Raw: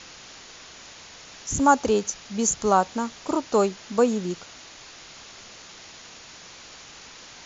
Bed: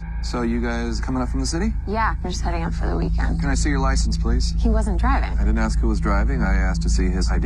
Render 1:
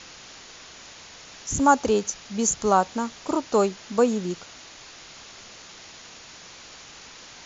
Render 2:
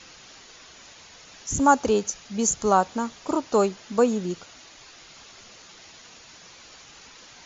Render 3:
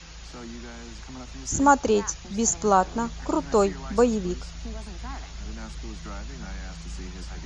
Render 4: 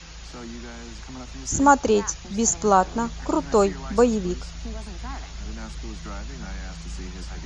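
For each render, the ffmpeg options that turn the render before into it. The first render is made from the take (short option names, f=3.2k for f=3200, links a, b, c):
-af anull
-af "afftdn=nr=6:nf=-46"
-filter_complex "[1:a]volume=-17.5dB[a];[0:a][a]amix=inputs=2:normalize=0"
-af "volume=2dB"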